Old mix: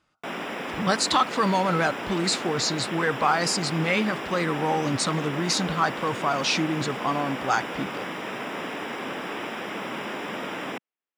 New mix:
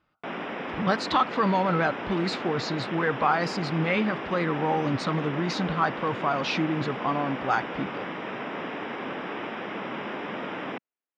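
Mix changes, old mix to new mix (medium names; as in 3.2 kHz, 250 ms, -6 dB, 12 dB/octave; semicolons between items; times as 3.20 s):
speech: remove low-pass 9 kHz; master: add distance through air 240 m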